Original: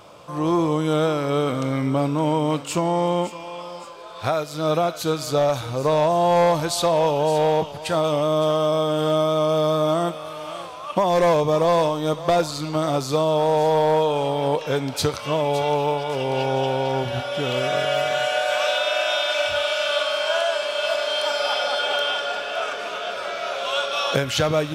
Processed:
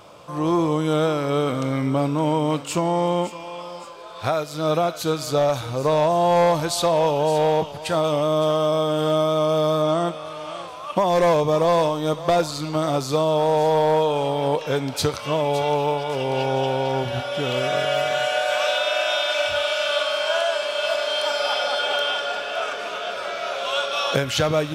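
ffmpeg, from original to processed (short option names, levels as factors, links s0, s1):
-filter_complex "[0:a]asettb=1/sr,asplit=3[s0][s1][s2];[s0]atrim=end=9.824[s3];[s1]atrim=start=9.82:end=10.68,asetpts=PTS-STARTPTS,afade=t=in:d=0.004:c=qsin,afade=t=out:st=0.856:d=0.004:c=qsin,lowpass=8700[s4];[s2]atrim=start=10.676[s5];[s3][s4]acrossfade=d=0.004:c1=hsin:c2=qsin[s6];[s6][s5]acrossfade=d=0.004:c1=qsin:c2=hsin"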